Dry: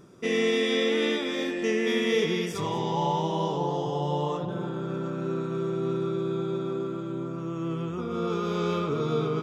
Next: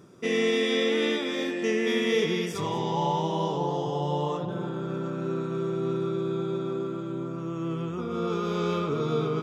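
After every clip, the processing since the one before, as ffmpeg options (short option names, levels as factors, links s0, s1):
-af "highpass=62"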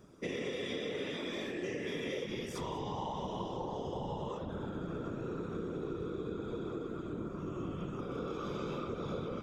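-af "afftfilt=real='hypot(re,im)*cos(2*PI*random(0))':imag='hypot(re,im)*sin(2*PI*random(1))':win_size=512:overlap=0.75,acompressor=threshold=0.0178:ratio=6"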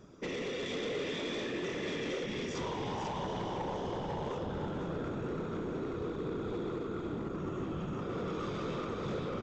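-af "aresample=16000,asoftclip=type=hard:threshold=0.0141,aresample=44100,aecho=1:1:494:0.501,volume=1.41"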